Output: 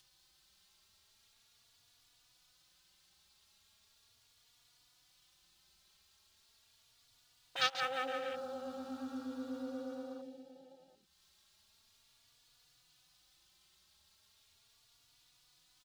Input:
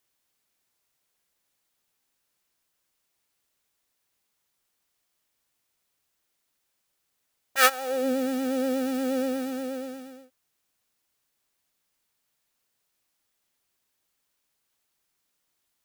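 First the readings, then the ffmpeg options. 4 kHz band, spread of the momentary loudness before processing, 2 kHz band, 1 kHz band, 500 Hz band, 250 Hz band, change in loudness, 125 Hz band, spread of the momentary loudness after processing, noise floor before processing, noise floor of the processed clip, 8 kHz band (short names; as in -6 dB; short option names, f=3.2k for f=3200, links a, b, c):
-6.0 dB, 14 LU, -11.5 dB, -10.5 dB, -14.0 dB, -15.5 dB, -13.5 dB, n/a, 18 LU, -77 dBFS, -71 dBFS, -18.5 dB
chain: -filter_complex "[0:a]asplit=2[a][b];[b]acrusher=samples=10:mix=1:aa=0.000001:lfo=1:lforange=6:lforate=1.3,volume=-8dB[c];[a][c]amix=inputs=2:normalize=0,acompressor=threshold=-36dB:ratio=2,highshelf=f=8.8k:g=-12,asplit=2[d][e];[e]aecho=0:1:190|361|514.9|653.4|778.1:0.631|0.398|0.251|0.158|0.1[f];[d][f]amix=inputs=2:normalize=0,acompressor=mode=upward:threshold=-37dB:ratio=2.5,afwtdn=0.00794,equalizer=f=250:t=o:w=1:g=-10,equalizer=f=500:t=o:w=1:g=-11,equalizer=f=1k:t=o:w=1:g=-4,equalizer=f=2k:t=o:w=1:g=-7,equalizer=f=4k:t=o:w=1:g=9,asplit=2[g][h];[h]adelay=3.5,afreqshift=0.38[i];[g][i]amix=inputs=2:normalize=1,volume=5dB"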